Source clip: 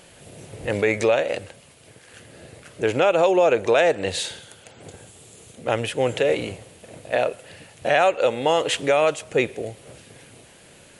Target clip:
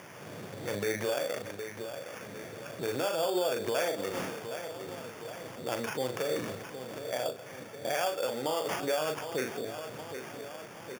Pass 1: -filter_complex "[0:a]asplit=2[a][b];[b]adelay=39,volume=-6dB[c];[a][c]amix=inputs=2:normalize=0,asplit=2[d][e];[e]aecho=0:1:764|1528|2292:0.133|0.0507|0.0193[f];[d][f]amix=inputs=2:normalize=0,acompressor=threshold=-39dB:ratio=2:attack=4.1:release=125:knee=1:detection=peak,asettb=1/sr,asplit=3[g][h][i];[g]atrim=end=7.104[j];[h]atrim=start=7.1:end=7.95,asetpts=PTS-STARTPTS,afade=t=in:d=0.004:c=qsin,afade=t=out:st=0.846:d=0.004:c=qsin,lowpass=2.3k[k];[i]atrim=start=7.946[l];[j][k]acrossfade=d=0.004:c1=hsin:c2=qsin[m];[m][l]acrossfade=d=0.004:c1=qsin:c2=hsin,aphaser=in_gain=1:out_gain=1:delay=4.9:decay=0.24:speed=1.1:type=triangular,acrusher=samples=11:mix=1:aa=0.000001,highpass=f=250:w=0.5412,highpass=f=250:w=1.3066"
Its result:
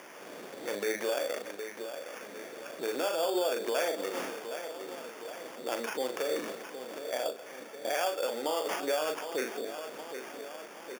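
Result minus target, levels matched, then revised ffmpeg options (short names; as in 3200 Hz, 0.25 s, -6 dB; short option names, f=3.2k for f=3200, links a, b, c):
125 Hz band -17.0 dB
-filter_complex "[0:a]asplit=2[a][b];[b]adelay=39,volume=-6dB[c];[a][c]amix=inputs=2:normalize=0,asplit=2[d][e];[e]aecho=0:1:764|1528|2292:0.133|0.0507|0.0193[f];[d][f]amix=inputs=2:normalize=0,acompressor=threshold=-39dB:ratio=2:attack=4.1:release=125:knee=1:detection=peak,asettb=1/sr,asplit=3[g][h][i];[g]atrim=end=7.104[j];[h]atrim=start=7.1:end=7.95,asetpts=PTS-STARTPTS,afade=t=in:d=0.004:c=qsin,afade=t=out:st=0.846:d=0.004:c=qsin,lowpass=2.3k[k];[i]atrim=start=7.946[l];[j][k]acrossfade=d=0.004:c1=hsin:c2=qsin[m];[m][l]acrossfade=d=0.004:c1=qsin:c2=hsin,aphaser=in_gain=1:out_gain=1:delay=4.9:decay=0.24:speed=1.1:type=triangular,acrusher=samples=11:mix=1:aa=0.000001,highpass=f=110:w=0.5412,highpass=f=110:w=1.3066"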